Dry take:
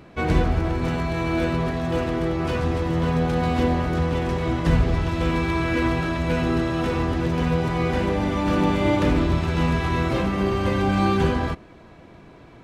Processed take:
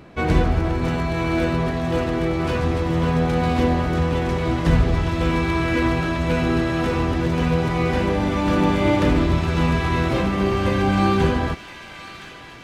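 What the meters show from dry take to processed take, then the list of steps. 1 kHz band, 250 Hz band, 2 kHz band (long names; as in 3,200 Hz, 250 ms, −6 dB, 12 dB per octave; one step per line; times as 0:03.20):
+2.0 dB, +2.0 dB, +2.5 dB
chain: delay with a high-pass on its return 1,018 ms, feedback 67%, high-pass 1,700 Hz, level −9.5 dB
level +2 dB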